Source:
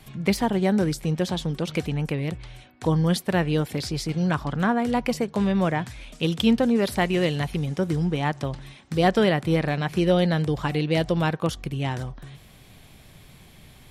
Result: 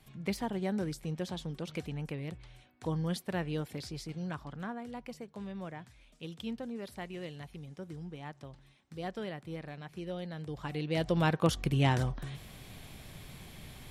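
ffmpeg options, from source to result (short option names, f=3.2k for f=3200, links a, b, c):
-af "volume=8dB,afade=t=out:st=3.66:d=1.26:silence=0.421697,afade=t=in:st=10.34:d=0.58:silence=0.334965,afade=t=in:st=10.92:d=0.87:silence=0.298538"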